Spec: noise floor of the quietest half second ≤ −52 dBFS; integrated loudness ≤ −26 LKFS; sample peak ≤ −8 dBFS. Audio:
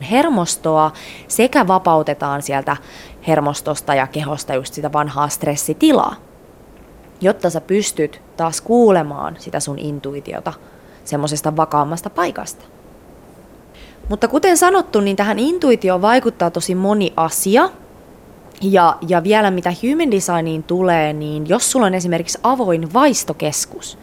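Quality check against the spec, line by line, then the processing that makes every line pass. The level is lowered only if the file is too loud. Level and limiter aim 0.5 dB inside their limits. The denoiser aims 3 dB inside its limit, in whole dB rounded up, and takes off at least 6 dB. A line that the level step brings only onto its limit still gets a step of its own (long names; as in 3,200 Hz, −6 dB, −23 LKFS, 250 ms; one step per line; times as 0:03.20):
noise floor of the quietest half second −43 dBFS: out of spec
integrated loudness −16.5 LKFS: out of spec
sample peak −1.5 dBFS: out of spec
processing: level −10 dB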